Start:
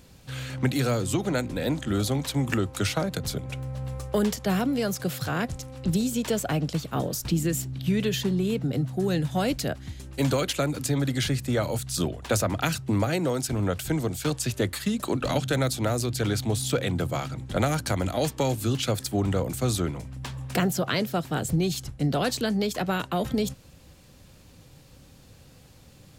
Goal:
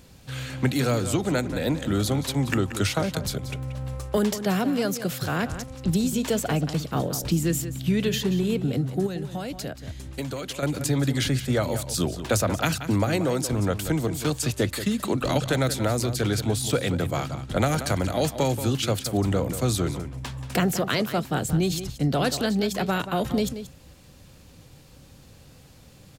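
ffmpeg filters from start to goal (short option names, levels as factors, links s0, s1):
-filter_complex "[0:a]asettb=1/sr,asplit=3[s0][s1][s2];[s0]atrim=end=4.174[s3];[s1]atrim=start=4.17:end=5.12,asetpts=PTS-STARTPTS,afade=t=in:d=0.004:c=qsin,afade=t=out:st=0.946:d=0.004:c=qsin,highpass=140[s4];[s2]atrim=start=5.116[s5];[s3][s4]acrossfade=d=0.004:c1=hsin:c2=qsin[s6];[s6][s5]acrossfade=d=0.004:c1=qsin:c2=hsin,asettb=1/sr,asplit=3[s7][s8][s9];[s7]atrim=end=9.064[s10];[s8]atrim=start=9.06:end=10.63,asetpts=PTS-STARTPTS,afade=t=in:d=0.004:c=qsin,afade=t=out:st=1.566:d=0.004:c=qsin,acompressor=threshold=0.0282:ratio=6[s11];[s9]atrim=start=10.626[s12];[s10][s11]acrossfade=d=0.004:c1=hsin:c2=qsin[s13];[s13][s12]acrossfade=d=0.004:c1=qsin:c2=hsin,asplit=2[s14][s15];[s15]adelay=180.8,volume=0.282,highshelf=f=4000:g=-4.07[s16];[s14][s16]amix=inputs=2:normalize=0,volume=1.19"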